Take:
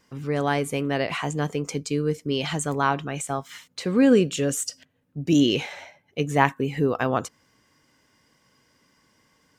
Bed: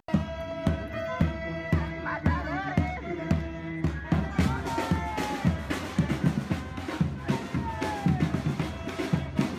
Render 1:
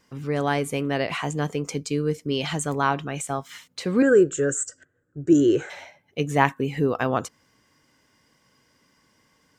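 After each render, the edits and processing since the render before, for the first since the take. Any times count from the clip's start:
0:04.02–0:05.70: drawn EQ curve 120 Hz 0 dB, 240 Hz −11 dB, 340 Hz +8 dB, 950 Hz −10 dB, 1,500 Hz +11 dB, 2,300 Hz −13 dB, 5,100 Hz −16 dB, 7,600 Hz +6 dB, 11,000 Hz −27 dB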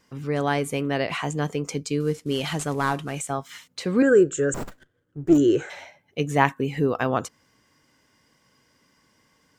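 0:02.00–0:03.20: variable-slope delta modulation 64 kbit/s
0:04.54–0:05.38: windowed peak hold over 9 samples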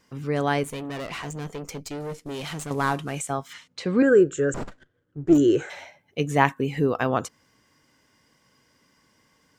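0:00.63–0:02.71: tube saturation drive 29 dB, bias 0.65
0:03.53–0:05.33: high-frequency loss of the air 66 metres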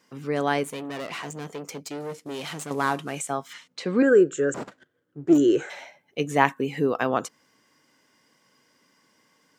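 high-pass filter 190 Hz 12 dB per octave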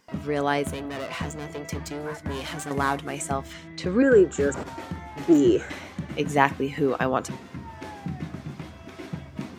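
mix in bed −8 dB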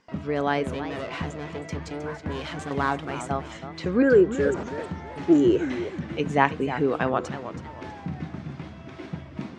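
high-frequency loss of the air 100 metres
feedback echo with a swinging delay time 318 ms, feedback 33%, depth 199 cents, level −11.5 dB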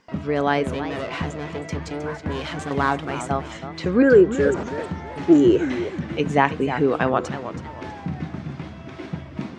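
level +4 dB
brickwall limiter −2 dBFS, peak gain reduction 3 dB

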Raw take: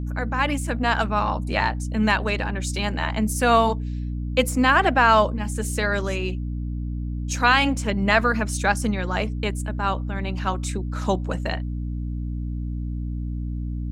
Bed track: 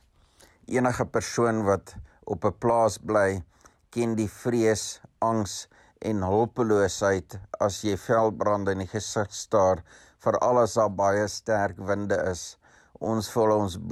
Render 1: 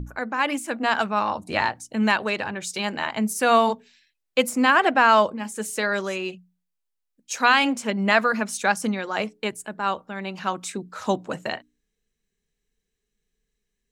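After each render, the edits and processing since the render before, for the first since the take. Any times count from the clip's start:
mains-hum notches 60/120/180/240/300 Hz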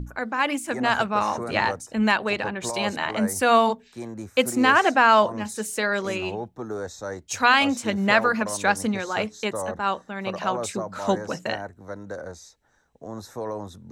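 mix in bed track −9.5 dB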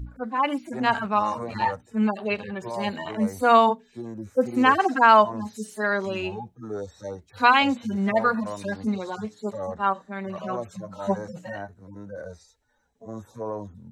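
harmonic-percussive split with one part muted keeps harmonic
dynamic equaliser 970 Hz, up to +4 dB, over −33 dBFS, Q 2.8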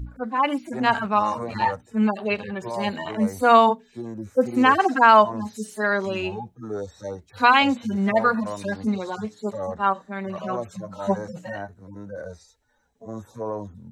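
level +2 dB
brickwall limiter −3 dBFS, peak gain reduction 1.5 dB

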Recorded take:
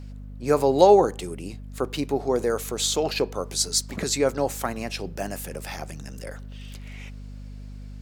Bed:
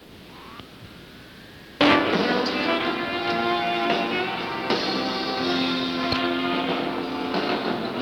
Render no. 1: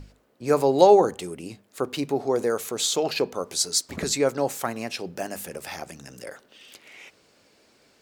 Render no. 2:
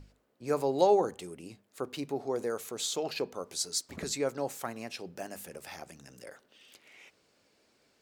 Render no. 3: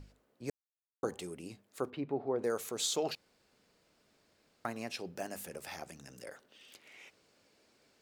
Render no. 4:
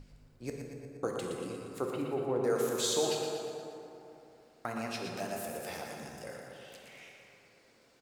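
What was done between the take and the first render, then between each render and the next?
mains-hum notches 50/100/150/200/250 Hz
level −9 dB
0:00.50–0:01.03: silence; 0:01.90–0:02.44: high-frequency loss of the air 470 metres; 0:03.15–0:04.65: fill with room tone
repeating echo 118 ms, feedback 57%, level −7 dB; dense smooth reverb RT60 3.1 s, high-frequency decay 0.4×, DRR 1 dB

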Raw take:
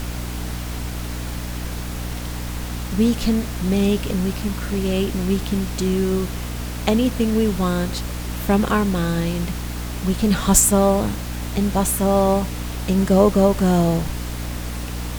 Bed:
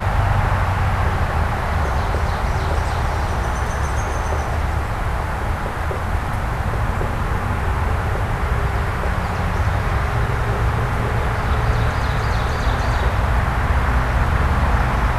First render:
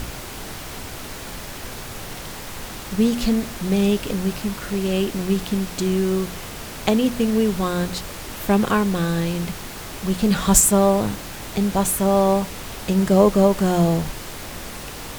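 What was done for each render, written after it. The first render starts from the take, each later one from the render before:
hum removal 60 Hz, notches 5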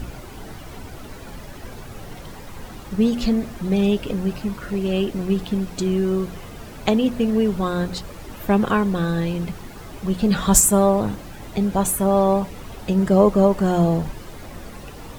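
broadband denoise 11 dB, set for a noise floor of −34 dBFS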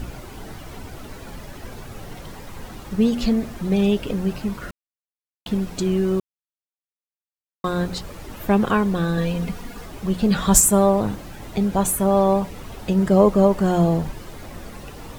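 0:04.71–0:05.46: silence
0:06.20–0:07.64: silence
0:09.17–0:09.86: comb filter 4.2 ms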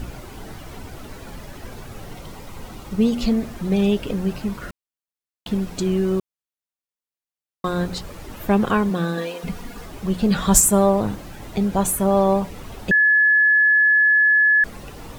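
0:02.12–0:03.32: notch filter 1,700 Hz, Q 7.7
0:08.89–0:09.43: high-pass filter 97 Hz → 410 Hz 24 dB per octave
0:12.91–0:14.64: beep over 1,710 Hz −12 dBFS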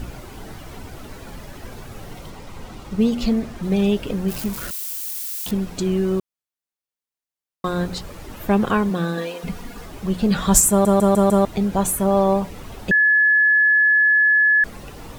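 0:02.30–0:03.63: running median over 3 samples
0:04.28–0:05.51: spike at every zero crossing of −22 dBFS
0:10.70: stutter in place 0.15 s, 5 plays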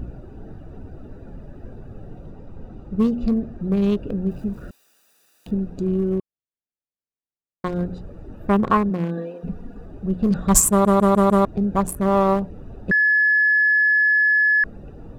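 adaptive Wiener filter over 41 samples
parametric band 1,100 Hz +13.5 dB 0.23 octaves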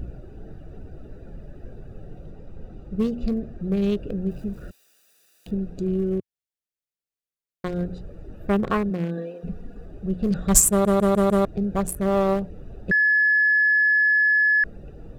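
graphic EQ with 15 bands 100 Hz −4 dB, 250 Hz −6 dB, 1,000 Hz −10 dB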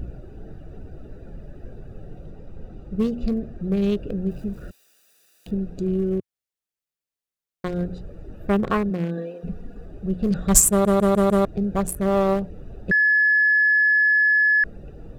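level +1 dB

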